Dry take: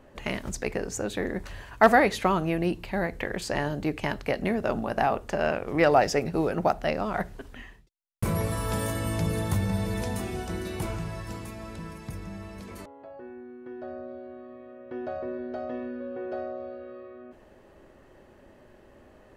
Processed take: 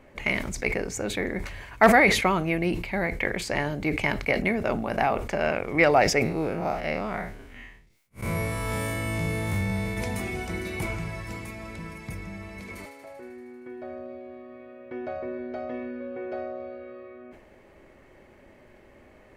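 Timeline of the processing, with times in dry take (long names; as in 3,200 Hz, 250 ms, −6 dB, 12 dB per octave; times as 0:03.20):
0:06.23–0:09.97: spectrum smeared in time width 99 ms
0:12.41–0:14.89: delay with a high-pass on its return 78 ms, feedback 78%, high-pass 1,500 Hz, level −8 dB
whole clip: parametric band 2,200 Hz +13.5 dB 0.22 octaves; level that may fall only so fast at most 71 dB per second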